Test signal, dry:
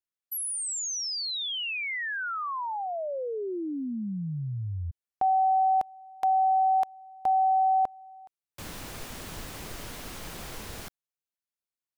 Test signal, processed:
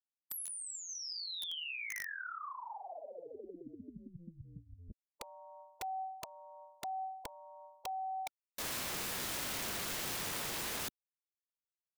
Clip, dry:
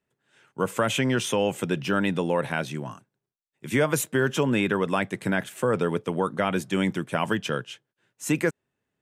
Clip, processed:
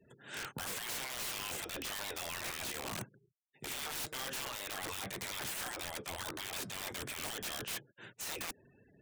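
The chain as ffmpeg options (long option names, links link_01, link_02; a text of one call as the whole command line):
ffmpeg -i in.wav -filter_complex "[0:a]afftfilt=real='re*lt(hypot(re,im),0.0447)':imag='im*lt(hypot(re,im),0.0447)':win_size=1024:overlap=0.75,acrossover=split=4000[link_01][link_02];[link_02]acompressor=threshold=-47dB:ratio=4:attack=1:release=60[link_03];[link_01][link_03]amix=inputs=2:normalize=0,afftfilt=real='re*gte(hypot(re,im),0.000178)':imag='im*gte(hypot(re,im),0.000178)':win_size=1024:overlap=0.75,areverse,acompressor=threshold=-53dB:ratio=5:attack=4.5:release=175:knee=1:detection=rms,areverse,aeval=exprs='(mod(376*val(0)+1,2)-1)/376':channel_layout=same,volume=18dB" out.wav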